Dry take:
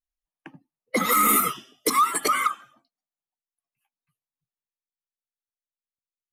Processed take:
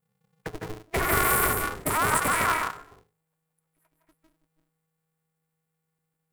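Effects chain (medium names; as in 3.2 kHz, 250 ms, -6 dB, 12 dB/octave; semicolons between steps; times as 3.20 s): bass shelf 200 Hz +7 dB; in parallel at +0.5 dB: compression, threshold -29 dBFS, peak gain reduction 12.5 dB; on the sum: saturation -25 dBFS, distortion -6 dB; brick-wall FIR band-stop 2.3–7.1 kHz; on a send at -2.5 dB: reverberation RT60 0.20 s, pre-delay 153 ms; on the sum: polarity switched at an audio rate 160 Hz; trim +2.5 dB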